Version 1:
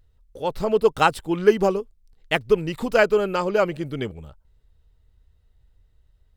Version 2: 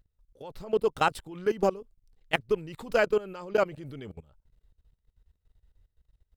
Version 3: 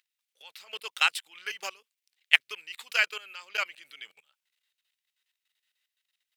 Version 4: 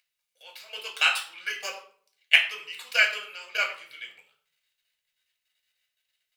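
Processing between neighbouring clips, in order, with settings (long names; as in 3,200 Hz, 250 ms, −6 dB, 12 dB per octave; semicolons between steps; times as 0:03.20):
output level in coarse steps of 19 dB; level −2.5 dB
high-pass with resonance 2,400 Hz, resonance Q 1.8; level +6 dB
convolution reverb RT60 0.50 s, pre-delay 3 ms, DRR 0 dB; level −2.5 dB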